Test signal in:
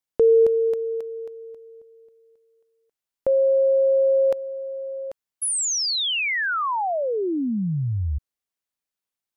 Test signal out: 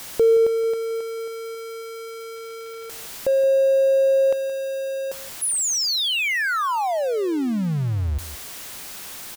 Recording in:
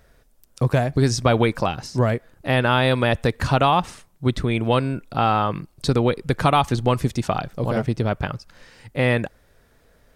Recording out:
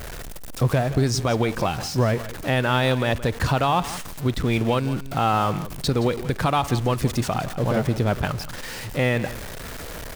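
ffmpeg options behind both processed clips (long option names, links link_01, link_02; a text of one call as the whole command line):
ffmpeg -i in.wav -af "aeval=exprs='val(0)+0.5*0.0398*sgn(val(0))':channel_layout=same,alimiter=limit=-10dB:level=0:latency=1:release=164,aecho=1:1:171:0.178,volume=-1dB" out.wav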